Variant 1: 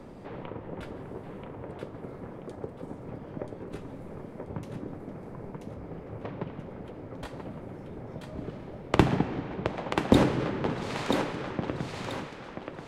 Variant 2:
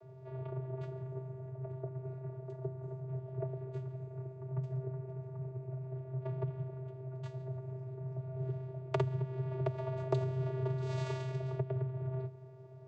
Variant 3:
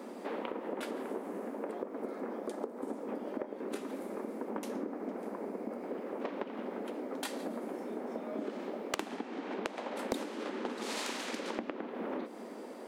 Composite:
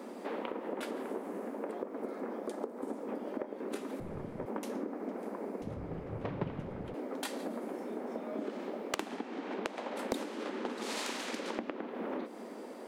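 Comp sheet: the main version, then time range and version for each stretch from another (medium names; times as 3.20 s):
3
4.00–4.46 s: from 1
5.62–6.94 s: from 1
not used: 2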